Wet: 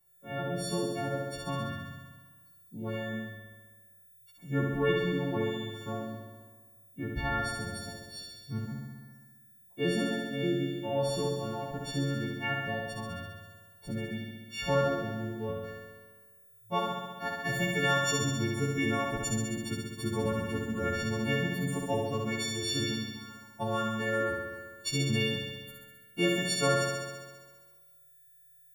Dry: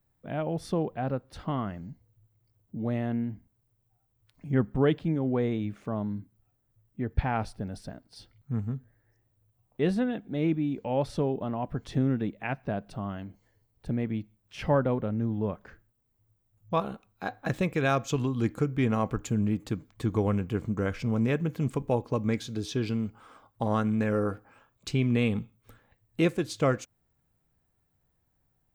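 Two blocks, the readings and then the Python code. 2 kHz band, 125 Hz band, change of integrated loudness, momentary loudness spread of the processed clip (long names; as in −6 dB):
+5.0 dB, −4.5 dB, −2.5 dB, 16 LU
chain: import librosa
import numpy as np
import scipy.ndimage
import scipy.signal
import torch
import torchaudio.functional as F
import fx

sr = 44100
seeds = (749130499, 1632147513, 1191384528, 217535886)

y = fx.freq_snap(x, sr, grid_st=4)
y = fx.room_flutter(y, sr, wall_m=11.4, rt60_s=1.4)
y = F.gain(torch.from_numpy(y), -5.0).numpy()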